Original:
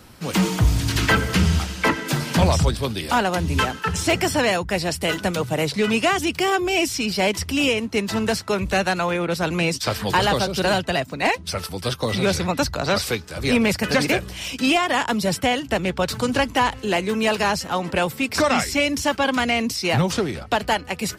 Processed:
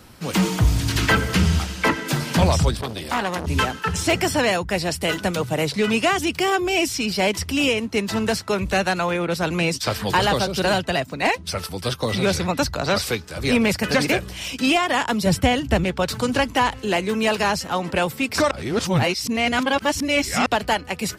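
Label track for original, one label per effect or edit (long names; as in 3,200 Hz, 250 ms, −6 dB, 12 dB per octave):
2.810000	3.470000	saturating transformer saturates under 1,400 Hz
15.260000	15.840000	parametric band 62 Hz +13 dB 2.9 octaves
18.510000	20.460000	reverse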